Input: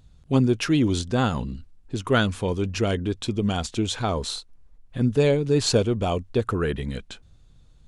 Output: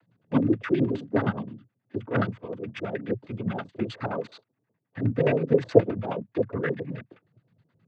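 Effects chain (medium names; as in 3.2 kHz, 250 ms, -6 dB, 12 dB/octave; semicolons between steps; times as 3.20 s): 2.28–2.92 s: level held to a coarse grid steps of 10 dB; tremolo 8.7 Hz, depth 50%; LFO low-pass square 9.5 Hz 480–1900 Hz; noise-vocoded speech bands 16; trim -2.5 dB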